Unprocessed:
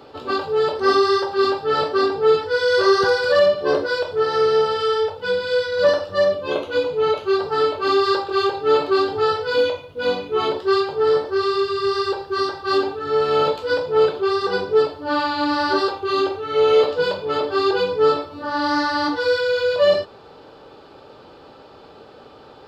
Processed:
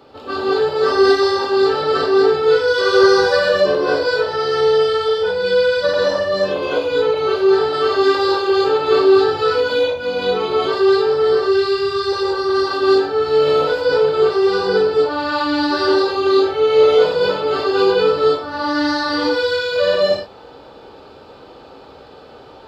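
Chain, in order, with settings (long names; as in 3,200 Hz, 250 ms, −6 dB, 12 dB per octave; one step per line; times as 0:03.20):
reverb whose tail is shaped and stops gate 240 ms rising, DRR −5.5 dB
level −3 dB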